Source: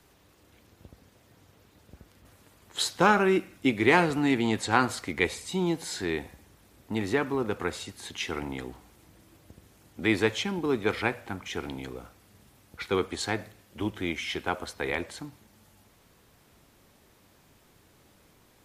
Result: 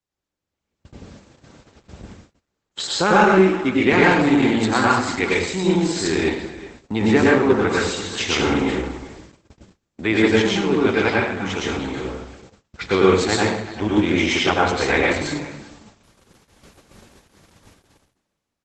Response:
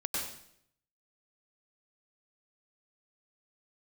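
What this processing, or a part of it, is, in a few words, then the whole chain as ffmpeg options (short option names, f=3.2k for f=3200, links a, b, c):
speakerphone in a meeting room: -filter_complex "[1:a]atrim=start_sample=2205[a];[0:a][a]afir=irnorm=-1:irlink=0,asplit=2[b][c];[c]adelay=380,highpass=300,lowpass=3.4k,asoftclip=type=hard:threshold=-13.5dB,volume=-16dB[d];[b][d]amix=inputs=2:normalize=0,dynaudnorm=f=140:g=13:m=13.5dB,agate=range=-29dB:threshold=-40dB:ratio=16:detection=peak,volume=-1dB" -ar 48000 -c:a libopus -b:a 12k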